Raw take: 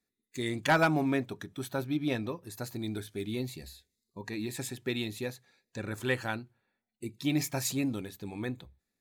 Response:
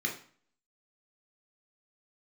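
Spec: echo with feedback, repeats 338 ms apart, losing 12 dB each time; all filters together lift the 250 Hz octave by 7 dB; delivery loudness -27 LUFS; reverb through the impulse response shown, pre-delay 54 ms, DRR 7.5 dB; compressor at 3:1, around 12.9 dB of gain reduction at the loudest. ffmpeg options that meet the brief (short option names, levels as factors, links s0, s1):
-filter_complex "[0:a]equalizer=f=250:t=o:g=8.5,acompressor=threshold=0.0141:ratio=3,aecho=1:1:338|676|1014:0.251|0.0628|0.0157,asplit=2[s0][s1];[1:a]atrim=start_sample=2205,adelay=54[s2];[s1][s2]afir=irnorm=-1:irlink=0,volume=0.224[s3];[s0][s3]amix=inputs=2:normalize=0,volume=3.55"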